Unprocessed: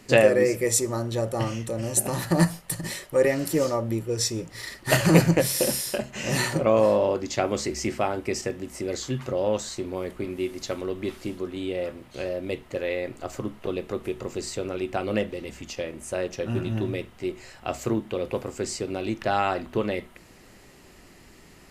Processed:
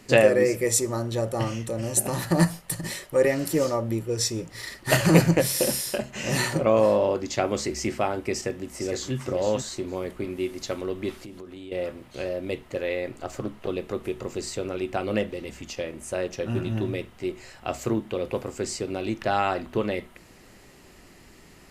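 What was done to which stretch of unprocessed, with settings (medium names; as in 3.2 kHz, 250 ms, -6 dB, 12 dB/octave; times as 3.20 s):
8.33–9.15 s: echo throw 460 ms, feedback 15%, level -7.5 dB
11.18–11.72 s: compression 5:1, threshold -38 dBFS
13.11–13.68 s: loudspeaker Doppler distortion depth 0.24 ms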